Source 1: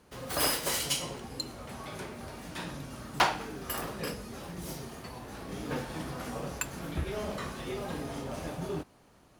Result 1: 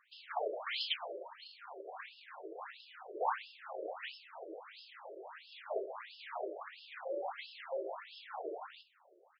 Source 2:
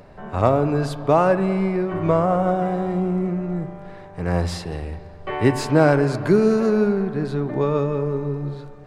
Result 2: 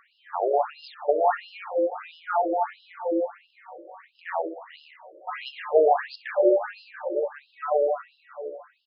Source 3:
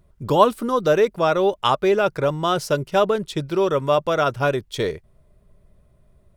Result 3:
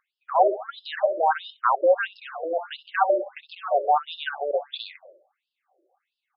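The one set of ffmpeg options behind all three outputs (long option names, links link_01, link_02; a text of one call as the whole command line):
ffmpeg -i in.wav -filter_complex "[0:a]afreqshift=150,asplit=2[link_01][link_02];[link_02]adelay=64,lowpass=frequency=2000:poles=1,volume=-10dB,asplit=2[link_03][link_04];[link_04]adelay=64,lowpass=frequency=2000:poles=1,volume=0.46,asplit=2[link_05][link_06];[link_06]adelay=64,lowpass=frequency=2000:poles=1,volume=0.46,asplit=2[link_07][link_08];[link_08]adelay=64,lowpass=frequency=2000:poles=1,volume=0.46,asplit=2[link_09][link_10];[link_10]adelay=64,lowpass=frequency=2000:poles=1,volume=0.46[link_11];[link_01][link_03][link_05][link_07][link_09][link_11]amix=inputs=6:normalize=0,afftfilt=real='re*between(b*sr/1024,450*pow(3800/450,0.5+0.5*sin(2*PI*1.5*pts/sr))/1.41,450*pow(3800/450,0.5+0.5*sin(2*PI*1.5*pts/sr))*1.41)':imag='im*between(b*sr/1024,450*pow(3800/450,0.5+0.5*sin(2*PI*1.5*pts/sr))/1.41,450*pow(3800/450,0.5+0.5*sin(2*PI*1.5*pts/sr))*1.41)':win_size=1024:overlap=0.75" out.wav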